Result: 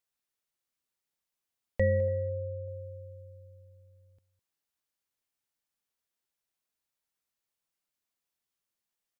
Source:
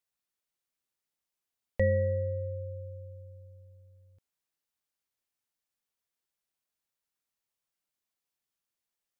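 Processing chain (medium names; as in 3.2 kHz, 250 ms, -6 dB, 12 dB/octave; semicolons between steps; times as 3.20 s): 2.08–2.68 s: distance through air 450 m; delay 207 ms -17 dB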